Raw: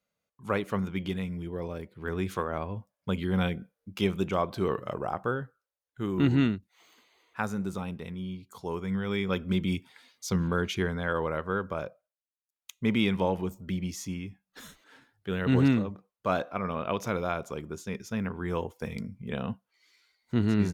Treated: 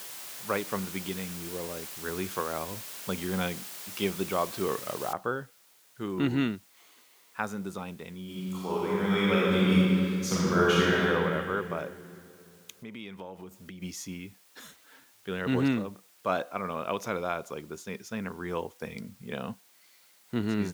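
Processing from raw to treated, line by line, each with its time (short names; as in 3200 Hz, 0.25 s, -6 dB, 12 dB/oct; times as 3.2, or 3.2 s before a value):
5.13 noise floor step -42 dB -61 dB
8.24–11.03 reverb throw, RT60 2.8 s, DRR -7.5 dB
12.71–13.82 compressor 4:1, threshold -38 dBFS
whole clip: HPF 260 Hz 6 dB/oct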